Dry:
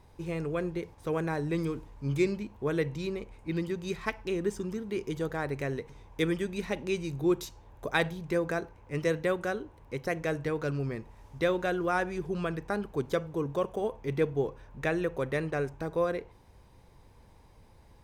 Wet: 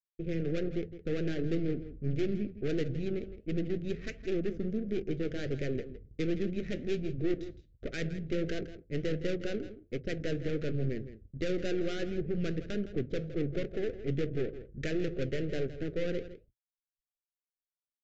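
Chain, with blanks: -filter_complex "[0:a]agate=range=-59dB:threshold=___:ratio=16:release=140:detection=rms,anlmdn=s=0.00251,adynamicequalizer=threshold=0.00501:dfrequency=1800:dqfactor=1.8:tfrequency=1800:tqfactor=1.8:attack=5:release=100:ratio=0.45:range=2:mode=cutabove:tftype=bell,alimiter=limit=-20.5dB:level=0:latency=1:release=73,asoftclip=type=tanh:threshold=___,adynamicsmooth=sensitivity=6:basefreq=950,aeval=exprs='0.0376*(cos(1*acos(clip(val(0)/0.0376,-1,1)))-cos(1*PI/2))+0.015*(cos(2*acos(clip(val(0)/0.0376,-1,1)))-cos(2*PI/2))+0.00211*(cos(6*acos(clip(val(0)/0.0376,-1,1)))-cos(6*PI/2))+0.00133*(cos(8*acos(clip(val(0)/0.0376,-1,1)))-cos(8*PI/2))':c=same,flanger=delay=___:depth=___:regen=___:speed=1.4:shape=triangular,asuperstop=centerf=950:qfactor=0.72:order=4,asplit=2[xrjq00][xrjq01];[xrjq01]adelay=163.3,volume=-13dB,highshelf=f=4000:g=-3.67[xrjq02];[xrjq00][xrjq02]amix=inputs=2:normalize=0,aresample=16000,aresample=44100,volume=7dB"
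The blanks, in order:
-49dB, -28.5dB, 3.1, 9, -76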